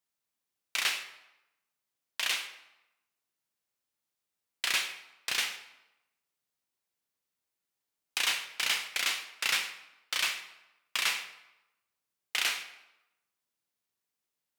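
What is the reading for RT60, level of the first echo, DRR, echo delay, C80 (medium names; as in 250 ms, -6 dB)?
0.95 s, no echo, 7.0 dB, no echo, 12.5 dB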